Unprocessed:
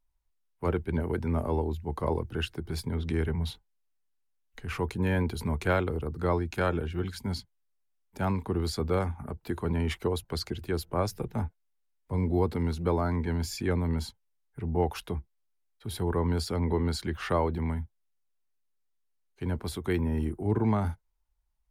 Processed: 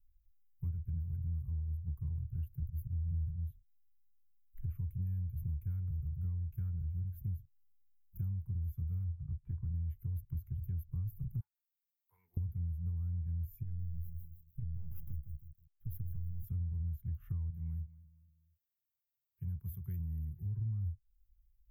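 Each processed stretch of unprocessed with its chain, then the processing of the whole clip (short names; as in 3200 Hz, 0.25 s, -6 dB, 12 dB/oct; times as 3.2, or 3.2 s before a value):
2.62–3.31 tone controls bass +8 dB, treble +7 dB + notch 250 Hz, Q 5.5 + auto swell 0.212 s
9.04–9.74 LPF 2400 Hz + overloaded stage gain 27.5 dB
11.4–12.37 HPF 640 Hz 24 dB/oct + Doppler distortion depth 0.1 ms
13.63–16.44 half-wave gain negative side -12 dB + compressor 4:1, threshold -34 dBFS + lo-fi delay 0.159 s, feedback 35%, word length 10-bit, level -8 dB
17.5–20.59 HPF 250 Hz 6 dB/oct + feedback echo 0.237 s, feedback 41%, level -22.5 dB
whole clip: inverse Chebyshev band-stop 260–9300 Hz, stop band 40 dB; compressor 6:1, threshold -44 dBFS; gain +8.5 dB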